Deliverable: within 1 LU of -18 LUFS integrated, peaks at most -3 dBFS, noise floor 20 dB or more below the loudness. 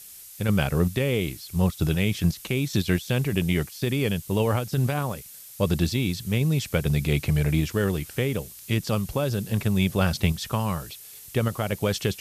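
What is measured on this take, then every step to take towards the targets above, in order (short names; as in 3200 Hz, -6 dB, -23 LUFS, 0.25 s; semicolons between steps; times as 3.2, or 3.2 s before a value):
noise floor -45 dBFS; noise floor target -46 dBFS; loudness -25.5 LUFS; peak -9.0 dBFS; loudness target -18.0 LUFS
-> noise print and reduce 6 dB; gain +7.5 dB; limiter -3 dBFS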